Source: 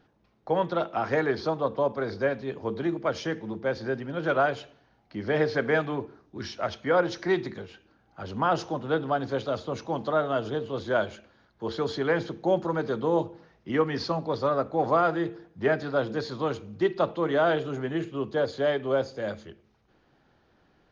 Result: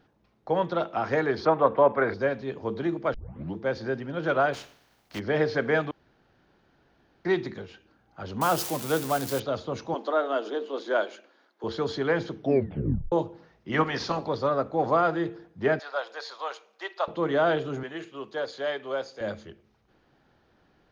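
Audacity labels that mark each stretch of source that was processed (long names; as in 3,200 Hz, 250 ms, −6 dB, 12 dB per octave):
1.450000	2.140000	drawn EQ curve 140 Hz 0 dB, 2,100 Hz +11 dB, 5,400 Hz −15 dB
3.140000	3.140000	tape start 0.43 s
4.530000	5.180000	compressing power law on the bin magnitudes exponent 0.47
5.910000	7.250000	fill with room tone
8.410000	9.400000	spike at every zero crossing of −22.5 dBFS
9.940000	11.640000	Butterworth high-pass 270 Hz
12.340000	12.340000	tape stop 0.78 s
13.710000	14.280000	ceiling on every frequency bin ceiling under each frame's peak by 14 dB
15.790000	17.080000	high-pass filter 640 Hz 24 dB per octave
17.830000	19.210000	high-pass filter 830 Hz 6 dB per octave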